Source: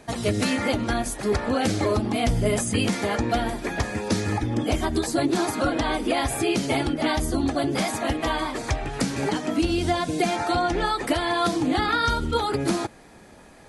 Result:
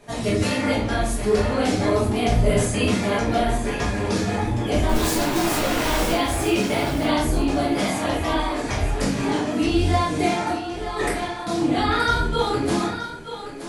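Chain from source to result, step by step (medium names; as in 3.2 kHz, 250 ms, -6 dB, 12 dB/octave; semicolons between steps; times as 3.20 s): 4.89–6.12 s: one-bit comparator; 10.50–11.47 s: compressor with a negative ratio -30 dBFS, ratio -0.5; chorus 1.3 Hz, delay 18 ms, depth 7.9 ms; thinning echo 924 ms, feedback 16%, high-pass 300 Hz, level -10 dB; simulated room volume 69 m³, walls mixed, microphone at 1.3 m; trim -1.5 dB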